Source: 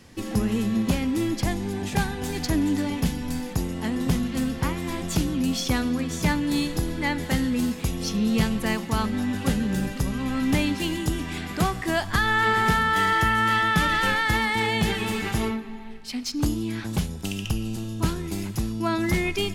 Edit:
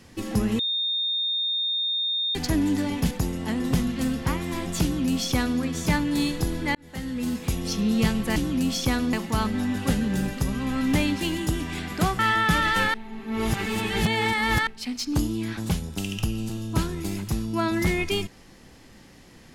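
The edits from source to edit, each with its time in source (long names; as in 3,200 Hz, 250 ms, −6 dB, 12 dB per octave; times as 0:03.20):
0:00.59–0:02.35: beep over 3,660 Hz −23 dBFS
0:03.11–0:03.47: remove
0:05.19–0:05.96: duplicate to 0:08.72
0:07.11–0:07.86: fade in
0:11.78–0:13.46: remove
0:14.21–0:15.94: reverse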